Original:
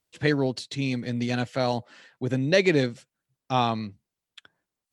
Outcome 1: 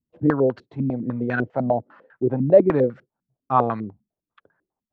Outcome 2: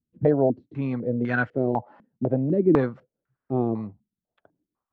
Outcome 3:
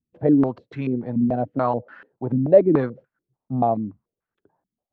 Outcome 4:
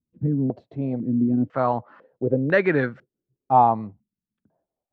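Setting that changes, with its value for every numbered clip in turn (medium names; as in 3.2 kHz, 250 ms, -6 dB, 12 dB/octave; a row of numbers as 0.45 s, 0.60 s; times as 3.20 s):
step-sequenced low-pass, rate: 10 Hz, 4 Hz, 6.9 Hz, 2 Hz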